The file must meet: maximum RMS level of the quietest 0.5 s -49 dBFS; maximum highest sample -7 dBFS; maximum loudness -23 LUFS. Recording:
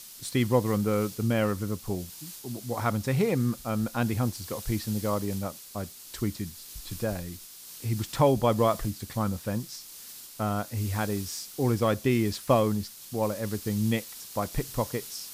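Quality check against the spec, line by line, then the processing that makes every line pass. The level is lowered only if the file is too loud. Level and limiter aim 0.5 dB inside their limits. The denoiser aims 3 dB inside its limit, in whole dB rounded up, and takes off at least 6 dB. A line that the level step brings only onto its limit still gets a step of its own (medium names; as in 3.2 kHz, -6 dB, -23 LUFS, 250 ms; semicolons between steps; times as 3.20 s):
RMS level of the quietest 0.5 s -45 dBFS: fail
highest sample -10.0 dBFS: pass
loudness -29.0 LUFS: pass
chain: noise reduction 7 dB, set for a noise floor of -45 dBFS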